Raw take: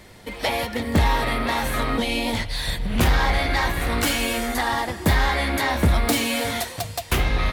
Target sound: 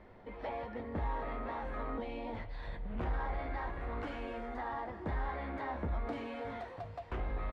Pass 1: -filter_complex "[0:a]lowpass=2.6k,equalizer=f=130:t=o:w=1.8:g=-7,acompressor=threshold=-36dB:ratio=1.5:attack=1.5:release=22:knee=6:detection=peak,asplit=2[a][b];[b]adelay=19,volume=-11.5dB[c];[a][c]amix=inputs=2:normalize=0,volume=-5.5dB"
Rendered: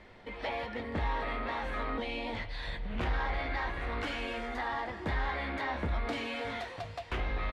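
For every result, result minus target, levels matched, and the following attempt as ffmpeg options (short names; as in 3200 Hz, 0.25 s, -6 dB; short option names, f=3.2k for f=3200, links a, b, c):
2000 Hz band +5.0 dB; compressor: peak gain reduction -3 dB
-filter_complex "[0:a]lowpass=1.2k,equalizer=f=130:t=o:w=1.8:g=-7,acompressor=threshold=-36dB:ratio=1.5:attack=1.5:release=22:knee=6:detection=peak,asplit=2[a][b];[b]adelay=19,volume=-11.5dB[c];[a][c]amix=inputs=2:normalize=0,volume=-5.5dB"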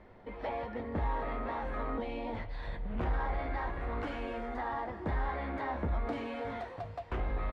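compressor: peak gain reduction -3 dB
-filter_complex "[0:a]lowpass=1.2k,equalizer=f=130:t=o:w=1.8:g=-7,acompressor=threshold=-45.5dB:ratio=1.5:attack=1.5:release=22:knee=6:detection=peak,asplit=2[a][b];[b]adelay=19,volume=-11.5dB[c];[a][c]amix=inputs=2:normalize=0,volume=-5.5dB"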